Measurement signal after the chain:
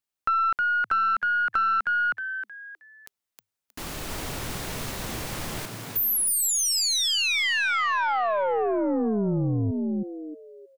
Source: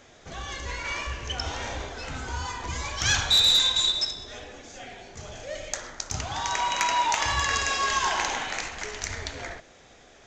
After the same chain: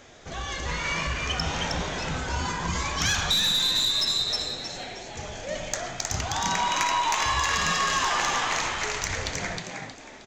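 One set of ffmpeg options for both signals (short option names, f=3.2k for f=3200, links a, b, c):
-filter_complex "[0:a]asplit=5[a][b][c][d][e];[b]adelay=314,afreqshift=100,volume=-4dB[f];[c]adelay=628,afreqshift=200,volume=-13.9dB[g];[d]adelay=942,afreqshift=300,volume=-23.8dB[h];[e]adelay=1256,afreqshift=400,volume=-33.7dB[i];[a][f][g][h][i]amix=inputs=5:normalize=0,aeval=exprs='0.398*(cos(1*acos(clip(val(0)/0.398,-1,1)))-cos(1*PI/2))+0.0891*(cos(2*acos(clip(val(0)/0.398,-1,1)))-cos(2*PI/2))+0.0398*(cos(4*acos(clip(val(0)/0.398,-1,1)))-cos(4*PI/2))+0.0316*(cos(5*acos(clip(val(0)/0.398,-1,1)))-cos(5*PI/2))+0.0224*(cos(6*acos(clip(val(0)/0.398,-1,1)))-cos(6*PI/2))':c=same,acompressor=threshold=-21dB:ratio=6"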